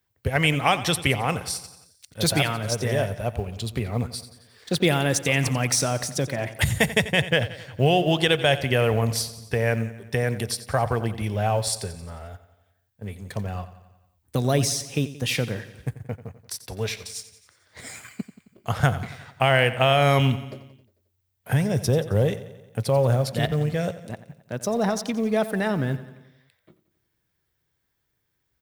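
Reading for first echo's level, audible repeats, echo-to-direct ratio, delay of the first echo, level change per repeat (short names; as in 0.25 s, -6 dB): -15.0 dB, 5, -13.0 dB, 89 ms, -4.5 dB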